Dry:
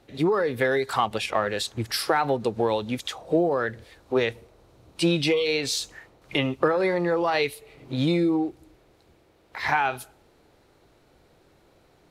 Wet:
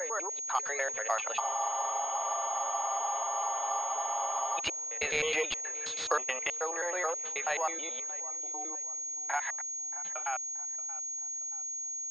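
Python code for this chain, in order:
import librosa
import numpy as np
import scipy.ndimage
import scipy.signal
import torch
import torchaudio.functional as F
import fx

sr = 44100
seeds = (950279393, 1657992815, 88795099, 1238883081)

p1 = fx.block_reorder(x, sr, ms=103.0, group=5)
p2 = fx.doppler_pass(p1, sr, speed_mps=16, closest_m=24.0, pass_at_s=4.24)
p3 = scipy.signal.sosfilt(scipy.signal.butter(4, 610.0, 'highpass', fs=sr, output='sos'), p2)
p4 = p3 + fx.echo_filtered(p3, sr, ms=628, feedback_pct=41, hz=2600.0, wet_db=-18.5, dry=0)
p5 = fx.spec_freeze(p4, sr, seeds[0], at_s=1.41, hold_s=3.18)
p6 = fx.pwm(p5, sr, carrier_hz=6600.0)
y = p6 * 10.0 ** (2.5 / 20.0)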